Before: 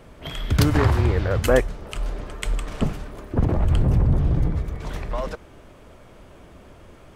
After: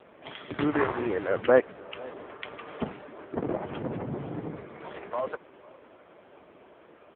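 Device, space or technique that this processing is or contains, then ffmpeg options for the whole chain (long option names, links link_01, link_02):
satellite phone: -af "highpass=300,lowpass=3100,aecho=1:1:497:0.075" -ar 8000 -c:a libopencore_amrnb -b:a 5900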